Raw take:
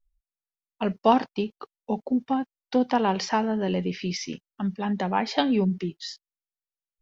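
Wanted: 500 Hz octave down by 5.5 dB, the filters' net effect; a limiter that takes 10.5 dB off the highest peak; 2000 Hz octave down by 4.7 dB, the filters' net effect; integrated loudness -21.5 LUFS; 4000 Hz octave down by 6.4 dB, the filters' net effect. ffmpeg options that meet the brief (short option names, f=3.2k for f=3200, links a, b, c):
-af "equalizer=f=500:t=o:g=-7,equalizer=f=2k:t=o:g=-4,equalizer=f=4k:t=o:g=-7.5,volume=11dB,alimiter=limit=-11dB:level=0:latency=1"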